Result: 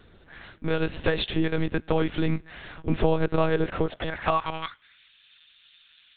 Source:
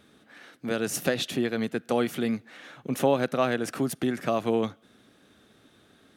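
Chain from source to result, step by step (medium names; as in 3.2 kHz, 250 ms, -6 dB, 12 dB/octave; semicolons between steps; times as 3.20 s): high-pass sweep 64 Hz -> 2.8 kHz, 2.39–5.11 s; monotone LPC vocoder at 8 kHz 160 Hz; compression 2:1, threshold -24 dBFS, peak gain reduction 6 dB; trim +4.5 dB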